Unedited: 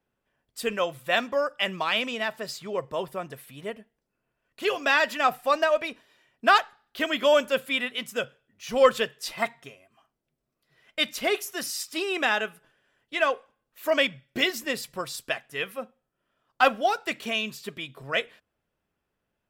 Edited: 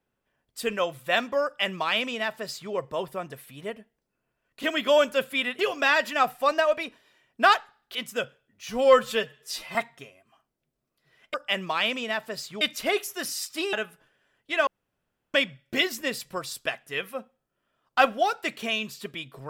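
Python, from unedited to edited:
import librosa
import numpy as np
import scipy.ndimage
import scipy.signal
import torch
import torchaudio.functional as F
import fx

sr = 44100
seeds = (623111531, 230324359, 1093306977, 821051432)

y = fx.edit(x, sr, fx.duplicate(start_s=1.45, length_s=1.27, to_s=10.99),
    fx.move(start_s=6.99, length_s=0.96, to_s=4.63),
    fx.stretch_span(start_s=8.7, length_s=0.7, factor=1.5),
    fx.cut(start_s=12.11, length_s=0.25),
    fx.room_tone_fill(start_s=13.3, length_s=0.67), tone=tone)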